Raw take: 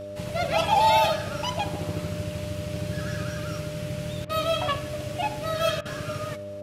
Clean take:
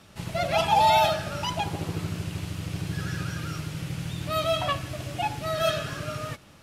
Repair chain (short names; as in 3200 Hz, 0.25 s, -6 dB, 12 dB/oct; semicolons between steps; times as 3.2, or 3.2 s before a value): de-hum 100.5 Hz, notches 5; notch 600 Hz, Q 30; interpolate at 4.25/5.81, 43 ms; inverse comb 74 ms -19.5 dB